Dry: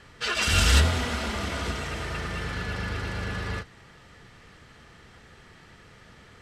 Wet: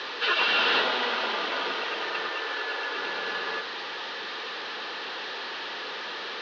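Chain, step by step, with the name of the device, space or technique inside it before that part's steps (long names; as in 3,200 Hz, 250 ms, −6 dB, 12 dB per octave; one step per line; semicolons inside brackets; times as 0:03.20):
digital answering machine (band-pass filter 310–3,300 Hz; linear delta modulator 32 kbit/s, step −34 dBFS; loudspeaker in its box 480–4,300 Hz, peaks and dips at 660 Hz −7 dB, 1,300 Hz −5 dB, 2,100 Hz −8 dB, 3,900 Hz +3 dB)
0:02.29–0:02.96: elliptic high-pass filter 280 Hz, stop band 40 dB
level +8.5 dB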